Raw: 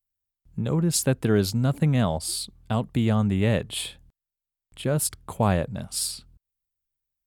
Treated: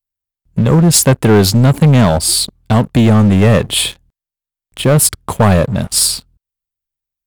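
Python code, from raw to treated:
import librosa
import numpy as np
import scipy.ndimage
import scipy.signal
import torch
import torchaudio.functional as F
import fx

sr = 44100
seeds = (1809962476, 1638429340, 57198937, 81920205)

y = fx.leveller(x, sr, passes=3)
y = y * 10.0 ** (5.5 / 20.0)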